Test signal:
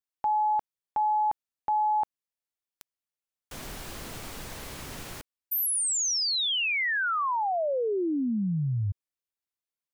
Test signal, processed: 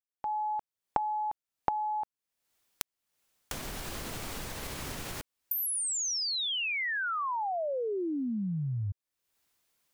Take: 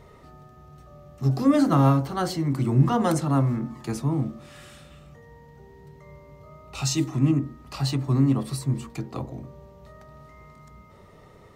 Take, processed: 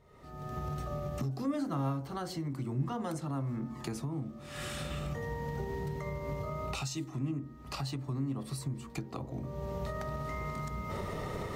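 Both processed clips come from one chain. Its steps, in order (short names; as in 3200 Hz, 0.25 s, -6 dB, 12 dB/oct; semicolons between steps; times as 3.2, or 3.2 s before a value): recorder AGC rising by 48 dB/s, up to +32 dB; gain -14.5 dB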